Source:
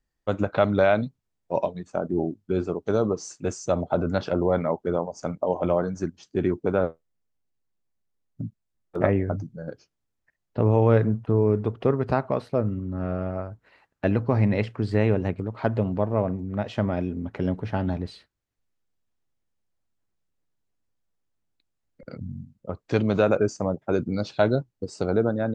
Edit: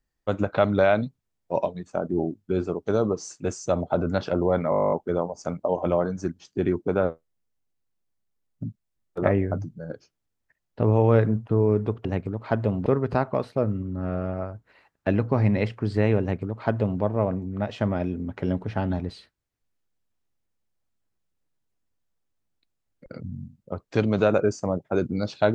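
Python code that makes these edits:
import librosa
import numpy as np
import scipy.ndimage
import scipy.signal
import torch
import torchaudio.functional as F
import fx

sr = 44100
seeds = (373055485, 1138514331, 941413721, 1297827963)

y = fx.edit(x, sr, fx.stutter(start_s=4.7, slice_s=0.02, count=12),
    fx.duplicate(start_s=15.18, length_s=0.81, to_s=11.83), tone=tone)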